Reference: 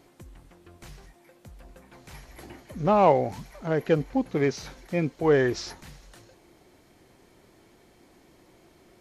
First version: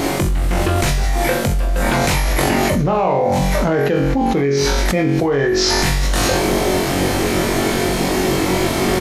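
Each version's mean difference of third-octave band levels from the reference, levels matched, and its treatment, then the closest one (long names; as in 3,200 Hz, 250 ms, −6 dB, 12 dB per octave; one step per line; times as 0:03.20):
14.5 dB: double-tracking delay 38 ms −13 dB
flutter between parallel walls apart 3.7 metres, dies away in 0.44 s
envelope flattener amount 100%
level −3 dB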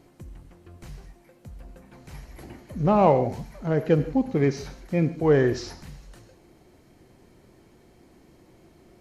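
3.0 dB: low-shelf EQ 400 Hz +8 dB
notch filter 3,500 Hz, Q 21
reverb whose tail is shaped and stops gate 170 ms flat, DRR 11 dB
level −2.5 dB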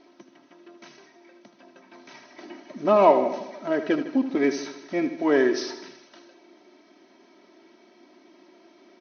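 6.0 dB: linear-phase brick-wall band-pass 150–6,400 Hz
comb filter 3.1 ms, depth 78%
repeating echo 78 ms, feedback 59%, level −11 dB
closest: second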